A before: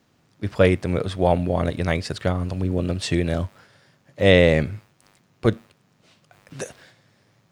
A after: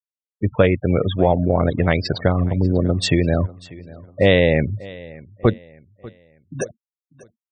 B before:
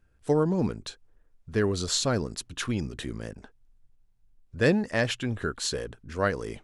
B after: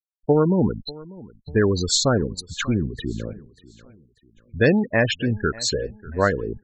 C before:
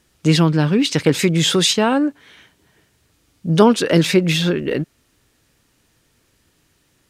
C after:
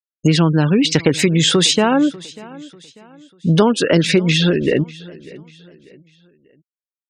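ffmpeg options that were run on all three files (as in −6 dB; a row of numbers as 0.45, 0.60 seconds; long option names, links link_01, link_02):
-filter_complex "[0:a]afftfilt=real='re*gte(hypot(re,im),0.0398)':imag='im*gte(hypot(re,im),0.0398)':win_size=1024:overlap=0.75,acompressor=threshold=-20dB:ratio=3,asplit=2[link_01][link_02];[link_02]aecho=0:1:593|1186|1779:0.0891|0.0339|0.0129[link_03];[link_01][link_03]amix=inputs=2:normalize=0,volume=7.5dB"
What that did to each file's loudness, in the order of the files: +2.5, +6.0, +1.0 LU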